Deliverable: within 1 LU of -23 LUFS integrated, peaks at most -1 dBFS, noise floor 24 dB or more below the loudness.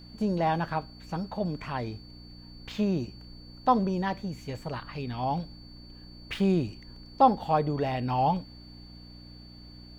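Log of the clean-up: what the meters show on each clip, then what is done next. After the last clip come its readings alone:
hum 60 Hz; harmonics up to 300 Hz; hum level -48 dBFS; steady tone 4500 Hz; tone level -52 dBFS; loudness -29.0 LUFS; peak -8.5 dBFS; loudness target -23.0 LUFS
-> de-hum 60 Hz, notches 5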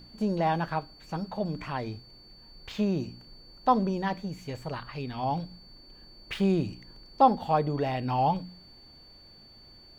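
hum none; steady tone 4500 Hz; tone level -52 dBFS
-> notch 4500 Hz, Q 30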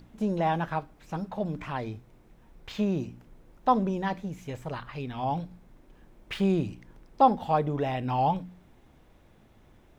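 steady tone none; loudness -29.5 LUFS; peak -8.5 dBFS; loudness target -23.0 LUFS
-> gain +6.5 dB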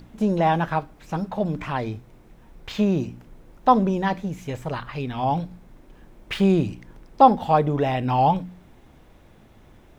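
loudness -23.0 LUFS; peak -2.0 dBFS; noise floor -52 dBFS

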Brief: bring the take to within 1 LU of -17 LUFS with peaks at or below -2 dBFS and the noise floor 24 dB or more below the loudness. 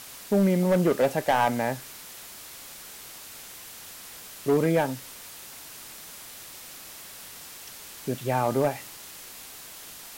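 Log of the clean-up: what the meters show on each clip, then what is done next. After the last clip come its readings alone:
clipped 0.8%; flat tops at -15.5 dBFS; noise floor -44 dBFS; noise floor target -50 dBFS; loudness -25.5 LUFS; peak -15.5 dBFS; loudness target -17.0 LUFS
-> clip repair -15.5 dBFS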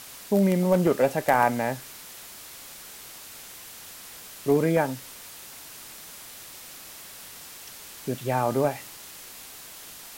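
clipped 0.0%; noise floor -44 dBFS; noise floor target -49 dBFS
-> denoiser 6 dB, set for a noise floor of -44 dBFS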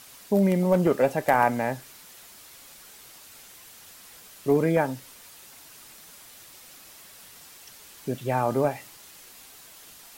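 noise floor -49 dBFS; loudness -24.5 LUFS; peak -6.5 dBFS; loudness target -17.0 LUFS
-> gain +7.5 dB; limiter -2 dBFS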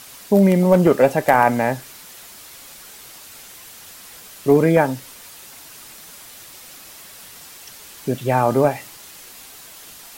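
loudness -17.5 LUFS; peak -2.0 dBFS; noise floor -42 dBFS

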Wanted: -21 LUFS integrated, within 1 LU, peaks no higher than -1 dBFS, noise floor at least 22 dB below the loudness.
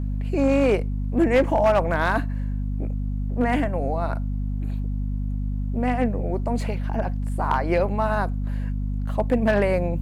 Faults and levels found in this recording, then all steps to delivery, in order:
clipped 0.5%; flat tops at -12.0 dBFS; hum 50 Hz; harmonics up to 250 Hz; hum level -23 dBFS; loudness -24.0 LUFS; peak -12.0 dBFS; loudness target -21.0 LUFS
-> clip repair -12 dBFS; notches 50/100/150/200/250 Hz; gain +3 dB

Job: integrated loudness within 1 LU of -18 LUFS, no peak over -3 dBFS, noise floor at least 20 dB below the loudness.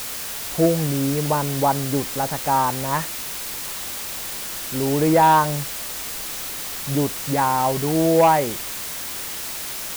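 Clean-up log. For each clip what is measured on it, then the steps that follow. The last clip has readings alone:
clipped 0.4%; flat tops at -9.0 dBFS; noise floor -31 dBFS; noise floor target -42 dBFS; loudness -21.5 LUFS; peak -9.0 dBFS; loudness target -18.0 LUFS
-> clip repair -9 dBFS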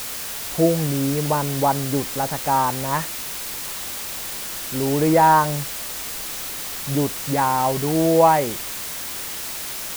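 clipped 0.0%; noise floor -31 dBFS; noise floor target -42 dBFS
-> noise print and reduce 11 dB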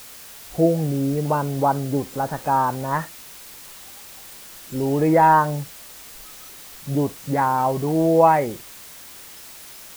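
noise floor -42 dBFS; loudness -20.5 LUFS; peak -3.5 dBFS; loudness target -18.0 LUFS
-> gain +2.5 dB; limiter -3 dBFS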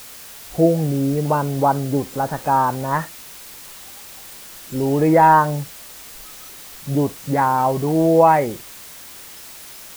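loudness -18.0 LUFS; peak -3.0 dBFS; noise floor -39 dBFS

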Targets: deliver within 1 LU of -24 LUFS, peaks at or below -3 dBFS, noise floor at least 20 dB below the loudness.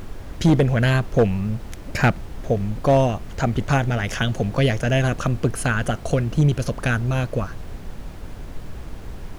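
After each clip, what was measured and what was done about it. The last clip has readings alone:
clipped 1.1%; flat tops at -10.0 dBFS; noise floor -36 dBFS; noise floor target -42 dBFS; loudness -21.5 LUFS; peak -10.0 dBFS; loudness target -24.0 LUFS
-> clip repair -10 dBFS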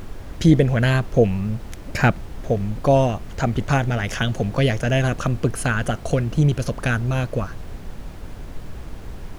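clipped 0.0%; noise floor -36 dBFS; noise floor target -41 dBFS
-> noise print and reduce 6 dB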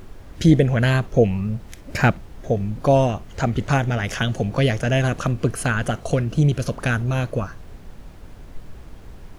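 noise floor -41 dBFS; loudness -21.0 LUFS; peak -2.0 dBFS; loudness target -24.0 LUFS
-> gain -3 dB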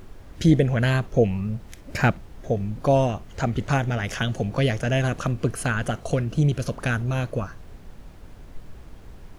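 loudness -24.0 LUFS; peak -5.0 dBFS; noise floor -44 dBFS

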